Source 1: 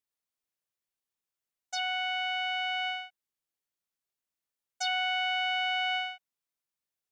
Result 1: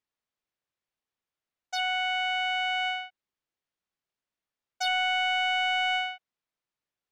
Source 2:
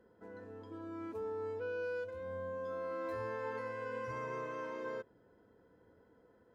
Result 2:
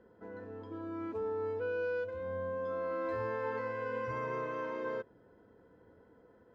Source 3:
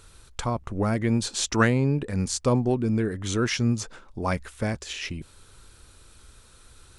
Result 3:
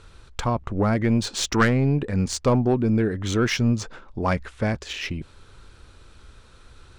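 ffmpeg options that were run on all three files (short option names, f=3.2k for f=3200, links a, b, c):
-af "aeval=exprs='0.473*(cos(1*acos(clip(val(0)/0.473,-1,1)))-cos(1*PI/2))+0.119*(cos(2*acos(clip(val(0)/0.473,-1,1)))-cos(2*PI/2))+0.0596*(cos(5*acos(clip(val(0)/0.473,-1,1)))-cos(5*PI/2))':c=same,adynamicsmooth=sensitivity=1.5:basefreq=4.8k"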